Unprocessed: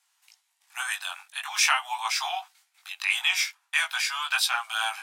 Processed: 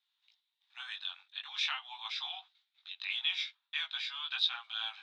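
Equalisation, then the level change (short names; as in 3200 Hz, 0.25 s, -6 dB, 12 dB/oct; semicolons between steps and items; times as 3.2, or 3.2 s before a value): HPF 690 Hz 12 dB/oct; ladder low-pass 3900 Hz, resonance 80%; -4.5 dB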